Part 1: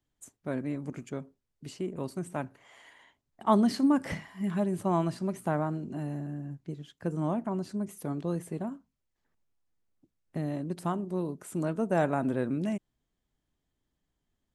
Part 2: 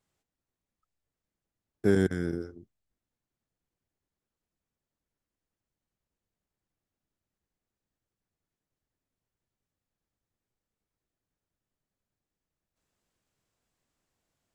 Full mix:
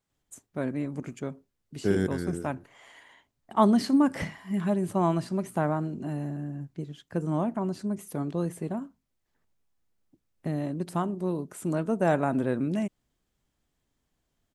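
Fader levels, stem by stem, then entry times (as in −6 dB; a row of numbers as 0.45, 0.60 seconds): +2.5, −2.0 decibels; 0.10, 0.00 seconds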